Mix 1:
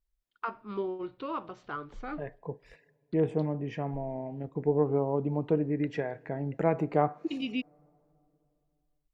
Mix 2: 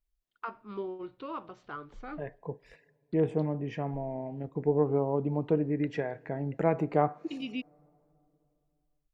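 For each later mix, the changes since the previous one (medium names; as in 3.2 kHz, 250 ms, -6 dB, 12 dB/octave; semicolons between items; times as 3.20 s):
first voice -3.5 dB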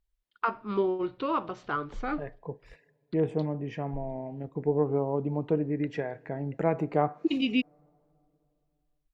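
first voice +10.0 dB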